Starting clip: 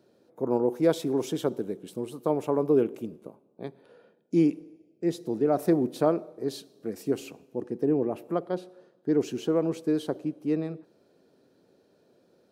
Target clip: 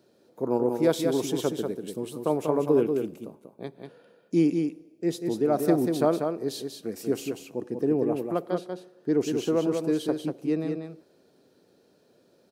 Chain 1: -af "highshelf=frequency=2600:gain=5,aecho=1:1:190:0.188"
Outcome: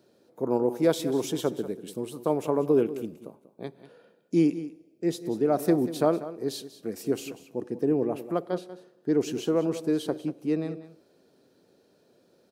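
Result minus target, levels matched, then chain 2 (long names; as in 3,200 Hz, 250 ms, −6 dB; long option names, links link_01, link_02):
echo-to-direct −9 dB
-af "highshelf=frequency=2600:gain=5,aecho=1:1:190:0.531"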